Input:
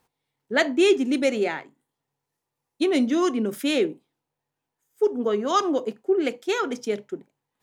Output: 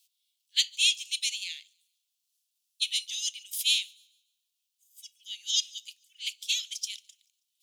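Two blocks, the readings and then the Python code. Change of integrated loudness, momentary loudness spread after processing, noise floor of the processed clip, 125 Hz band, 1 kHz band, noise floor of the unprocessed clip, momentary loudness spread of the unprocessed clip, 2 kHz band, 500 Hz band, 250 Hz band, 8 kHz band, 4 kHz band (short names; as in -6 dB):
-4.5 dB, 18 LU, -82 dBFS, under -40 dB, under -40 dB, -84 dBFS, 10 LU, -7.0 dB, under -40 dB, under -40 dB, +8.0 dB, +7.0 dB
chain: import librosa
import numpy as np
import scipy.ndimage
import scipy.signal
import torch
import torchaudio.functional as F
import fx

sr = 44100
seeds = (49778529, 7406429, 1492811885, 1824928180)

y = scipy.signal.sosfilt(scipy.signal.butter(8, 2900.0, 'highpass', fs=sr, output='sos'), x)
y = fx.echo_wet_highpass(y, sr, ms=145, feedback_pct=36, hz=4100.0, wet_db=-24.0)
y = F.gain(torch.from_numpy(y), 8.0).numpy()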